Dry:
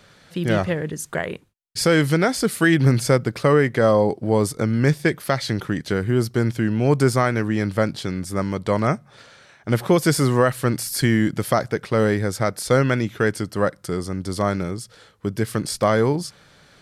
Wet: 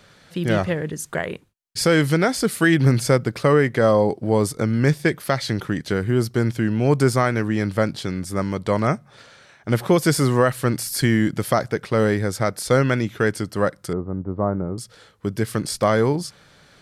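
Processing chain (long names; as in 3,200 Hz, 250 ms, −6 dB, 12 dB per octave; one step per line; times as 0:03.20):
0:13.93–0:14.78: low-pass filter 1,100 Hz 24 dB per octave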